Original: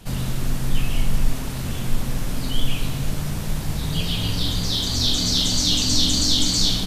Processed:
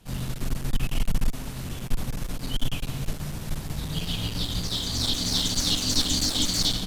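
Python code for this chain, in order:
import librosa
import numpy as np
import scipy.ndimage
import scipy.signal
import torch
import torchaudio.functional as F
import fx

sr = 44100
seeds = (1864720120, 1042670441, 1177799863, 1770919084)

y = fx.clip_asym(x, sr, top_db=-23.0, bottom_db=-10.0)
y = fx.upward_expand(y, sr, threshold_db=-37.0, expansion=1.5)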